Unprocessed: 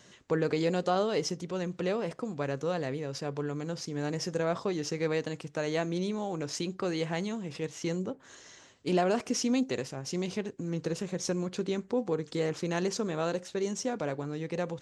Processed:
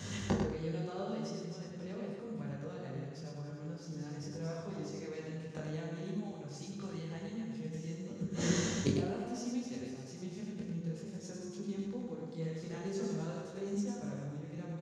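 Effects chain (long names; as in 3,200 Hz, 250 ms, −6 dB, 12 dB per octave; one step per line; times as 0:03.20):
feedback delay that plays each chunk backwards 140 ms, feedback 54%, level −5 dB
gate with flip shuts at −28 dBFS, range −28 dB
on a send at −2.5 dB: convolution reverb RT60 0.45 s, pre-delay 3 ms
0:12.60–0:13.90: on the sum: transient designer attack +7 dB, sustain +2 dB
chorus effect 0.43 Hz, delay 19.5 ms, depth 6.4 ms
repeating echo 99 ms, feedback 27%, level −4.5 dB
level +12 dB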